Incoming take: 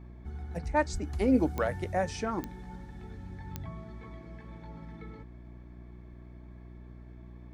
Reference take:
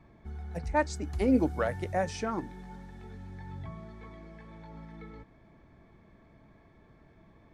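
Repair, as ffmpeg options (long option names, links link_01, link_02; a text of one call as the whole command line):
ffmpeg -i in.wav -filter_complex "[0:a]adeclick=threshold=4,bandreject=frequency=60.3:width_type=h:width=4,bandreject=frequency=120.6:width_type=h:width=4,bandreject=frequency=180.9:width_type=h:width=4,bandreject=frequency=241.2:width_type=h:width=4,bandreject=frequency=301.5:width_type=h:width=4,bandreject=frequency=361.8:width_type=h:width=4,asplit=3[link_01][link_02][link_03];[link_01]afade=type=out:start_time=0.92:duration=0.02[link_04];[link_02]highpass=frequency=140:width=0.5412,highpass=frequency=140:width=1.3066,afade=type=in:start_time=0.92:duration=0.02,afade=type=out:start_time=1.04:duration=0.02[link_05];[link_03]afade=type=in:start_time=1.04:duration=0.02[link_06];[link_04][link_05][link_06]amix=inputs=3:normalize=0" out.wav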